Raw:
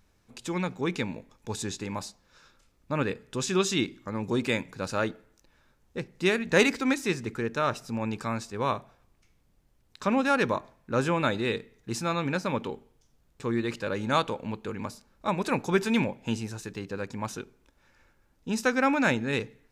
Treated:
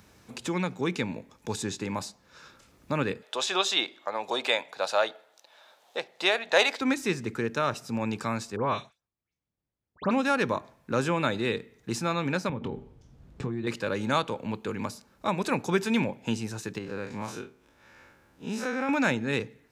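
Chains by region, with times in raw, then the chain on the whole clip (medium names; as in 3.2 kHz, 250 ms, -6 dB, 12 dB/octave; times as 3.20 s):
3.22–6.81 s: resonant high-pass 680 Hz, resonance Q 3.7 + peaking EQ 3.6 kHz +10.5 dB 0.69 oct
8.56–10.11 s: gate -55 dBFS, range -29 dB + distance through air 80 m + phase dispersion highs, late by 118 ms, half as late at 2.7 kHz
12.49–13.67 s: RIAA curve playback + compression 16:1, threshold -29 dBFS + doubling 23 ms -11 dB
16.78–18.89 s: spectral blur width 81 ms + tone controls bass -3 dB, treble -4 dB + compression 1.5:1, threshold -34 dBFS
whole clip: high-pass 71 Hz; three bands compressed up and down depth 40%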